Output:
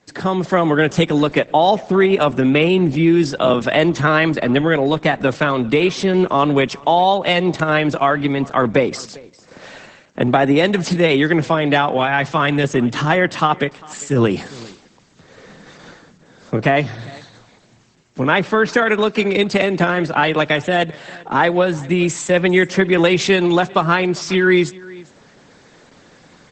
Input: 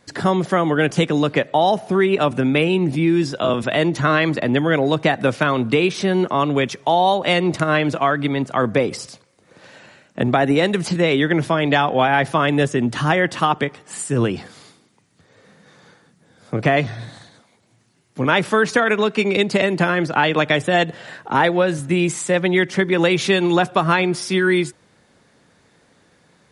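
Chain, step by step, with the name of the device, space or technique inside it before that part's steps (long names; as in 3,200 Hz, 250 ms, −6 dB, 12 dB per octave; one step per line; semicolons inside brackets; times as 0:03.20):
0:18.28–0:18.73: high-frequency loss of the air 97 metres
single-tap delay 399 ms −23.5 dB
0:11.97–0:12.64: dynamic equaliser 490 Hz, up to −5 dB, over −30 dBFS, Q 0.74
video call (high-pass filter 110 Hz 12 dB per octave; automatic gain control gain up to 11.5 dB; level −1 dB; Opus 12 kbit/s 48,000 Hz)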